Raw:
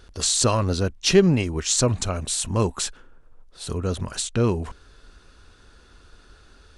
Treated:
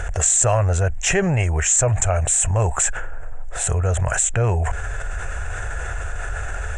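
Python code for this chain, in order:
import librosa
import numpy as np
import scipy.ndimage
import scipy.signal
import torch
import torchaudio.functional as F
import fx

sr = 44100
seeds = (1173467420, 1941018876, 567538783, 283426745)

y = fx.curve_eq(x, sr, hz=(110.0, 260.0, 710.0, 1100.0, 1700.0, 2600.0, 4500.0, 7400.0, 11000.0), db=(0, -22, 5, -8, 3, -5, -27, 5, -17))
y = fx.env_flatten(y, sr, amount_pct=70)
y = y * librosa.db_to_amplitude(3.5)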